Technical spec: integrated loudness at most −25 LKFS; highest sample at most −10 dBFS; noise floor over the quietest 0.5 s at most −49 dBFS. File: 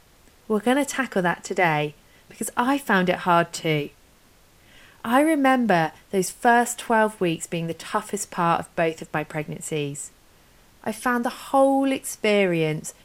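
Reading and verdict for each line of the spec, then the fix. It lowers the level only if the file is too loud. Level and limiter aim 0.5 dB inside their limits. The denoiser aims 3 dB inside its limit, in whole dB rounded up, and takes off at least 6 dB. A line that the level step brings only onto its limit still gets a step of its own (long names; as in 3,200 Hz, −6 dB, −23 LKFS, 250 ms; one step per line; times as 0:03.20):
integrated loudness −23.0 LKFS: out of spec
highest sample −5.0 dBFS: out of spec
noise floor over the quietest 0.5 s −55 dBFS: in spec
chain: level −2.5 dB
brickwall limiter −10.5 dBFS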